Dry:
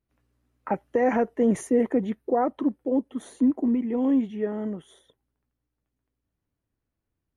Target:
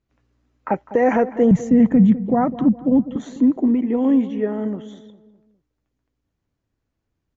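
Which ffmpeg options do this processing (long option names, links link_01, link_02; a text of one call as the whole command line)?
ffmpeg -i in.wav -filter_complex "[0:a]asettb=1/sr,asplit=3[link_01][link_02][link_03];[link_01]atrim=end=1.514[link_04];[link_02]atrim=start=1.51:end=3.16,asetpts=PTS-STARTPTS,afade=type=in:duration=0.004:curve=qsin,afade=type=out:start_time=1.646:duration=0.004:curve=qsin,lowshelf=frequency=250:width_type=q:width=3:gain=13[link_05];[link_03]atrim=start=3.156[link_06];[link_04][link_05]acrossfade=duration=0.004:curve1=hsin:curve2=qsin[link_07];[link_07][link_06]acrossfade=duration=0.004:curve1=qsin:curve2=hsin,alimiter=limit=-12dB:level=0:latency=1:release=229,asplit=2[link_08][link_09];[link_09]adelay=203,lowpass=frequency=1300:poles=1,volume=-14.5dB,asplit=2[link_10][link_11];[link_11]adelay=203,lowpass=frequency=1300:poles=1,volume=0.46,asplit=2[link_12][link_13];[link_13]adelay=203,lowpass=frequency=1300:poles=1,volume=0.46,asplit=2[link_14][link_15];[link_15]adelay=203,lowpass=frequency=1300:poles=1,volume=0.46[link_16];[link_10][link_12][link_14][link_16]amix=inputs=4:normalize=0[link_17];[link_08][link_17]amix=inputs=2:normalize=0,aresample=16000,aresample=44100,volume=5.5dB" out.wav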